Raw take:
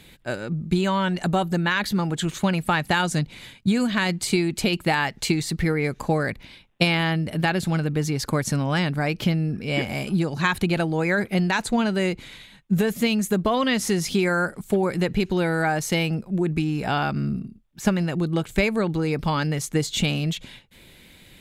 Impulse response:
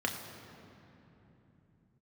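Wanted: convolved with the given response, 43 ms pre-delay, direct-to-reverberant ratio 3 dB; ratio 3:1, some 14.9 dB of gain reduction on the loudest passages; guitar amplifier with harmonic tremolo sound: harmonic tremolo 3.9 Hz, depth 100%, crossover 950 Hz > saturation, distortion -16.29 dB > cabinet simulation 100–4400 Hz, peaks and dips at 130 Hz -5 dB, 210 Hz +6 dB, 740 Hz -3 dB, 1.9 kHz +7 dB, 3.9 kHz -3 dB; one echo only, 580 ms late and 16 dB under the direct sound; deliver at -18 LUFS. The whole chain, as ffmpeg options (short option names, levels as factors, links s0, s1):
-filter_complex "[0:a]acompressor=threshold=0.0126:ratio=3,aecho=1:1:580:0.158,asplit=2[s0][s1];[1:a]atrim=start_sample=2205,adelay=43[s2];[s1][s2]afir=irnorm=-1:irlink=0,volume=0.335[s3];[s0][s3]amix=inputs=2:normalize=0,acrossover=split=950[s4][s5];[s4]aeval=exprs='val(0)*(1-1/2+1/2*cos(2*PI*3.9*n/s))':c=same[s6];[s5]aeval=exprs='val(0)*(1-1/2-1/2*cos(2*PI*3.9*n/s))':c=same[s7];[s6][s7]amix=inputs=2:normalize=0,asoftclip=threshold=0.0316,highpass=100,equalizer=f=130:t=q:w=4:g=-5,equalizer=f=210:t=q:w=4:g=6,equalizer=f=740:t=q:w=4:g=-3,equalizer=f=1900:t=q:w=4:g=7,equalizer=f=3900:t=q:w=4:g=-3,lowpass=f=4400:w=0.5412,lowpass=f=4400:w=1.3066,volume=11.9"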